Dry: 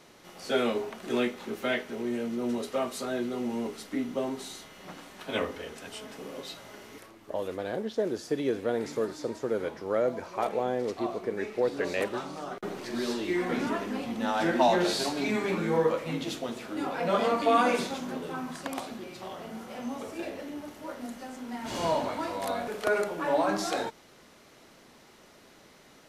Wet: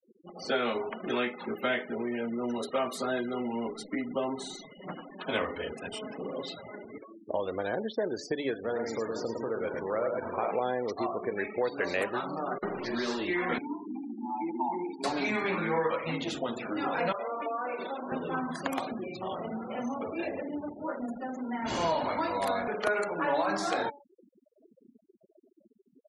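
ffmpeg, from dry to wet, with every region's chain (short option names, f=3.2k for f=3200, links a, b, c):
-filter_complex "[0:a]asettb=1/sr,asplit=3[a][b][c];[a]atrim=end=8.544[d];[b]atrim=start=8.54:end=10.51,asetpts=PTS-STARTPTS,afade=t=in:d=0.004:c=qsin,afade=t=out:st=1.966:d=0.004:c=qsin,bandreject=f=50:t=h:w=6,bandreject=f=100:t=h:w=6,bandreject=f=150:t=h:w=6,bandreject=f=200:t=h:w=6,bandreject=f=250:t=h:w=6,bandreject=f=300:t=h:w=6,bandreject=f=350:t=h:w=6,bandreject=f=400:t=h:w=6,acompressor=threshold=-38dB:ratio=1.5:attack=3.2:release=140:knee=1:detection=peak,aecho=1:1:44|107|491:0.299|0.668|0.335,atrim=end_sample=86877[e];[c]atrim=start=10.506[f];[d][e]acrossfade=d=0.004:c1=hsin:c2=qsin[g];[g][f]acrossfade=d=0.004:c1=qsin:c2=hsin,asettb=1/sr,asplit=3[h][i][j];[h]atrim=end=13.584[k];[i]atrim=start=13.58:end=15.04,asetpts=PTS-STARTPTS,afade=t=in:d=0.004:c=qsin,afade=t=out:st=1.456:d=0.004:c=qsin,asplit=3[l][m][n];[l]bandpass=f=300:t=q:w=8,volume=0dB[o];[m]bandpass=f=870:t=q:w=8,volume=-6dB[p];[n]bandpass=f=2.24k:t=q:w=8,volume=-9dB[q];[o][p][q]amix=inputs=3:normalize=0,highshelf=f=9.9k:g=10.5[r];[j]atrim=start=15.036[s];[k][r]acrossfade=d=0.004:c1=hsin:c2=qsin[t];[t][s]acrossfade=d=0.004:c1=qsin:c2=hsin,asettb=1/sr,asplit=3[u][v][w];[u]atrim=end=17.124[x];[v]atrim=start=17.12:end=18.12,asetpts=PTS-STARTPTS,afade=t=in:d=0.004:c=qsin,afade=t=out:st=0.996:d=0.004:c=qsin,highpass=440,equalizer=f=7.8k:t=o:w=1.9:g=-15,acompressor=threshold=-36dB:ratio=6:attack=3.2:release=140:knee=1:detection=peak[y];[w]atrim=start=18.116[z];[x][y]acrossfade=d=0.004:c1=hsin:c2=qsin[aa];[aa][z]acrossfade=d=0.004:c1=qsin:c2=hsin,bandreject=f=142.8:t=h:w=4,bandreject=f=285.6:t=h:w=4,bandreject=f=428.4:t=h:w=4,bandreject=f=571.2:t=h:w=4,bandreject=f=714:t=h:w=4,bandreject=f=856.8:t=h:w=4,bandreject=f=999.6:t=h:w=4,bandreject=f=1.1424k:t=h:w=4,bandreject=f=1.2852k:t=h:w=4,bandreject=f=1.428k:t=h:w=4,bandreject=f=1.5708k:t=h:w=4,bandreject=f=1.7136k:t=h:w=4,bandreject=f=1.8564k:t=h:w=4,bandreject=f=1.9992k:t=h:w=4,bandreject=f=2.142k:t=h:w=4,bandreject=f=2.2848k:t=h:w=4,bandreject=f=2.4276k:t=h:w=4,bandreject=f=2.5704k:t=h:w=4,bandreject=f=2.7132k:t=h:w=4,bandreject=f=2.856k:t=h:w=4,bandreject=f=2.9988k:t=h:w=4,bandreject=f=3.1416k:t=h:w=4,bandreject=f=3.2844k:t=h:w=4,bandreject=f=3.4272k:t=h:w=4,bandreject=f=3.57k:t=h:w=4,bandreject=f=3.7128k:t=h:w=4,bandreject=f=3.8556k:t=h:w=4,afftfilt=real='re*gte(hypot(re,im),0.00891)':imag='im*gte(hypot(re,im),0.00891)':win_size=1024:overlap=0.75,acrossover=split=740|2600|6400[ab][ac][ad][ae];[ab]acompressor=threshold=-38dB:ratio=4[af];[ac]acompressor=threshold=-35dB:ratio=4[ag];[ad]acompressor=threshold=-51dB:ratio=4[ah];[ae]acompressor=threshold=-53dB:ratio=4[ai];[af][ag][ah][ai]amix=inputs=4:normalize=0,volume=5.5dB"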